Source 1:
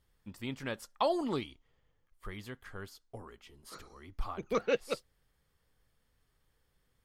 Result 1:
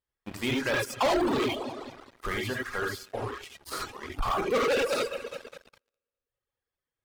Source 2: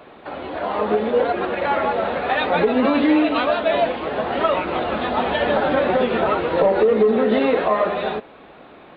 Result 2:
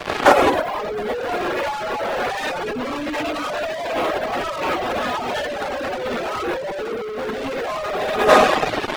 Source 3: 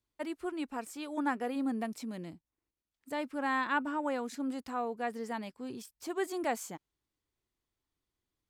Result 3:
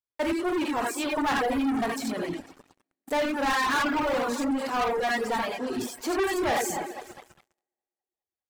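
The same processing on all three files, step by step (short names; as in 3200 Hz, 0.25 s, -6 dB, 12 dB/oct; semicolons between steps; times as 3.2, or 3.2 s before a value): regenerating reverse delay 0.102 s, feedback 74%, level -13.5 dB; tone controls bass -10 dB, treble -5 dB; non-linear reverb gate 0.11 s rising, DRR -1.5 dB; sample leveller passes 5; negative-ratio compressor -13 dBFS, ratio -0.5; reverb removal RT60 0.9 s; gain -4 dB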